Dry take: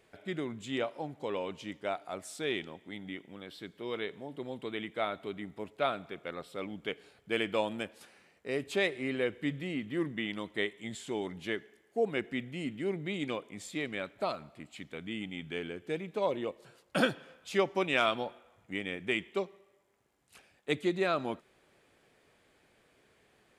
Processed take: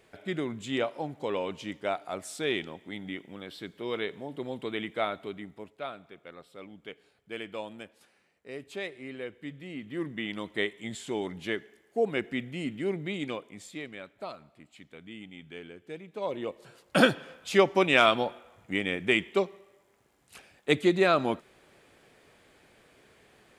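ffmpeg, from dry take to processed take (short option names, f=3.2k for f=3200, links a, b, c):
-af "volume=27dB,afade=t=out:st=4.93:d=0.89:silence=0.281838,afade=t=in:st=9.57:d=0.97:silence=0.316228,afade=t=out:st=12.92:d=1.05:silence=0.354813,afade=t=in:st=16.11:d=0.91:silence=0.223872"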